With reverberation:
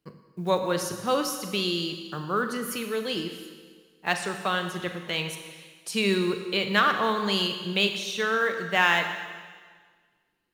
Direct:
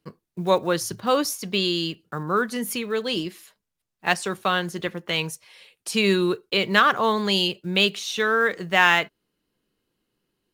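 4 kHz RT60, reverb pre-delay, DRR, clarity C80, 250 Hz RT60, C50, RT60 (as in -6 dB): 1.6 s, 36 ms, 6.0 dB, 8.5 dB, 1.6 s, 7.5 dB, 1.6 s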